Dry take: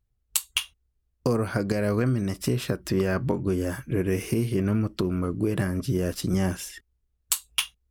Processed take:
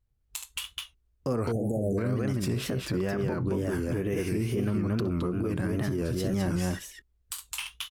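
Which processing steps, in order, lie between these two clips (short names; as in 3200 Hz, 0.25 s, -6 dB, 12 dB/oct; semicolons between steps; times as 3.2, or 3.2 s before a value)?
high shelf 4600 Hz -5 dB; on a send: tapped delay 69/216 ms -17/-3.5 dB; on the sum: limiter -20.5 dBFS, peak gain reduction 10.5 dB; spectral delete 1.52–1.98, 820–6200 Hz; wow and flutter 110 cents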